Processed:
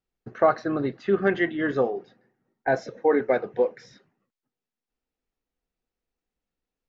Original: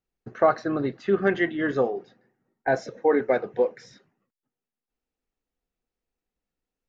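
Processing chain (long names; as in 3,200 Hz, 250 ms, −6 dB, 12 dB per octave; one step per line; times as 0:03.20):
low-pass filter 6,200 Hz 12 dB per octave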